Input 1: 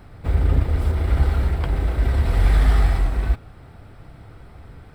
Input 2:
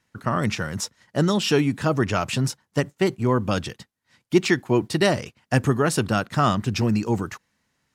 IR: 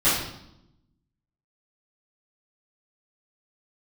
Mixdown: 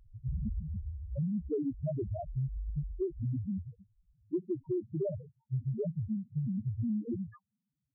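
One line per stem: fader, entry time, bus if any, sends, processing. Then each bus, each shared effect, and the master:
−4.0 dB, 0.00 s, no send, automatic ducking −13 dB, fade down 1.20 s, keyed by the second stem
−0.5 dB, 0.00 s, no send, notch filter 790 Hz, Q 16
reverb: not used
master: low-pass filter 1,400 Hz 24 dB per octave; spectral peaks only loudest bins 1; downward compressor, threshold −30 dBFS, peak gain reduction 10 dB

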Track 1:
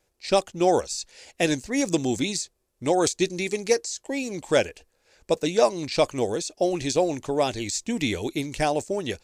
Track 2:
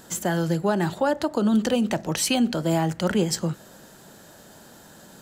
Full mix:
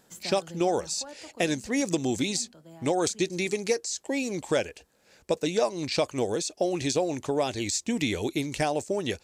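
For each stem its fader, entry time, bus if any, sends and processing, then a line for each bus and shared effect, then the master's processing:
+1.0 dB, 0.00 s, no send, high-pass filter 64 Hz
−14.5 dB, 0.00 s, no send, automatic ducking −12 dB, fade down 1.80 s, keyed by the first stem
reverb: not used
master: downward compressor 2.5 to 1, threshold −24 dBFS, peak gain reduction 8 dB

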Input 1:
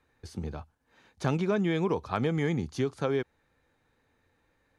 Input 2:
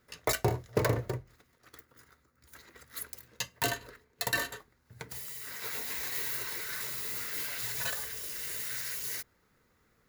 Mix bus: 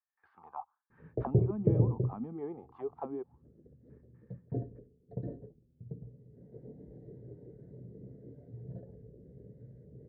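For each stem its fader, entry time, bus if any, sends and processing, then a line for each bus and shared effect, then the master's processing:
−3.5 dB, 0.00 s, no send, noise gate with hold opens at −60 dBFS; flat-topped bell 990 Hz +14 dB 1.2 octaves; envelope filter 230–1,800 Hz, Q 4.6, down, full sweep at −19.5 dBFS
−1.5 dB, 0.90 s, no send, inverse Chebyshev low-pass filter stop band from 1,000 Hz, stop band 40 dB; parametric band 160 Hz +11 dB 1.1 octaves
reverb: not used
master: low-pass filter 2,900 Hz 24 dB per octave; parametric band 1,400 Hz −9 dB 0.22 octaves

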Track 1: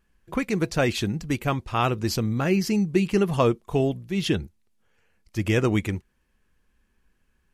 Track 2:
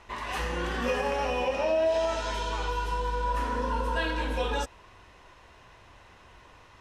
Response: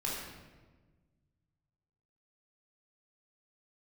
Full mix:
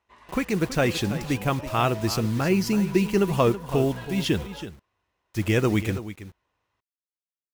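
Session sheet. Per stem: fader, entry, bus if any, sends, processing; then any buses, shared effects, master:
0.0 dB, 0.00 s, no send, echo send −13 dB, bit reduction 7 bits
−10.5 dB, 0.00 s, no send, no echo send, high-pass filter 54 Hz; expander for the loud parts 1.5 to 1, over −48 dBFS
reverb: not used
echo: single-tap delay 327 ms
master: no processing

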